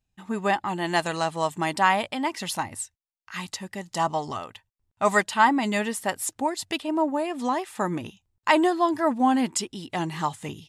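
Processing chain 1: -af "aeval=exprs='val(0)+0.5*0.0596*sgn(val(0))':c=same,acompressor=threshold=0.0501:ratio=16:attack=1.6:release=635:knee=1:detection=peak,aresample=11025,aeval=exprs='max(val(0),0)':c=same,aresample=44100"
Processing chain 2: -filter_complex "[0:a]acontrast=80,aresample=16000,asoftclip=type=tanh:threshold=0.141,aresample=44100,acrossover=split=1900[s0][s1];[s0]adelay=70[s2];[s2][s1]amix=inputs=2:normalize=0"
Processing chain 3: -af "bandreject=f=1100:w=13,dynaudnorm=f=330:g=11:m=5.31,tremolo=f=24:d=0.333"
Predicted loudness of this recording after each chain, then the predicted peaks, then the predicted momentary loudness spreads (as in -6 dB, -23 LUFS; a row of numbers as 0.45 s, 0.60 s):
-38.5 LUFS, -24.5 LUFS, -23.0 LUFS; -18.0 dBFS, -12.0 dBFS, -1.5 dBFS; 4 LU, 10 LU, 14 LU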